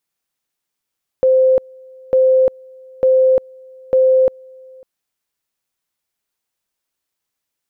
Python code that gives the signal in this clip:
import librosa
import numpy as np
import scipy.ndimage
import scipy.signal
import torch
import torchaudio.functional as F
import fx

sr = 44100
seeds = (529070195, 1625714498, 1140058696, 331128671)

y = fx.two_level_tone(sr, hz=520.0, level_db=-8.5, drop_db=28.5, high_s=0.35, low_s=0.55, rounds=4)